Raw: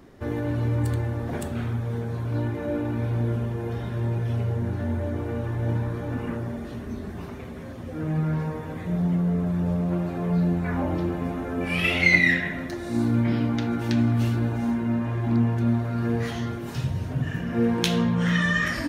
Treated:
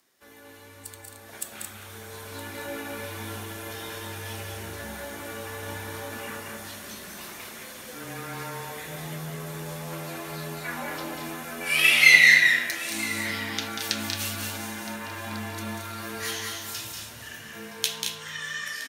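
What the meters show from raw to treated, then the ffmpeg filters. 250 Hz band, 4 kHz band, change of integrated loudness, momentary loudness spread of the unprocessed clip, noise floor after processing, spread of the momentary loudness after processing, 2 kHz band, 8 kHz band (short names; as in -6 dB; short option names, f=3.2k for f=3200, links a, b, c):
-15.0 dB, +7.0 dB, +0.5 dB, 9 LU, -47 dBFS, 19 LU, +4.5 dB, n/a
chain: -filter_complex "[0:a]aderivative,dynaudnorm=f=540:g=7:m=14.5dB,asplit=2[a][b];[b]aecho=0:1:189.5|221.6:0.501|0.501[c];[a][c]amix=inputs=2:normalize=0,afreqshift=-19,asplit=2[d][e];[e]aecho=0:1:967:0.126[f];[d][f]amix=inputs=2:normalize=0,volume=1dB"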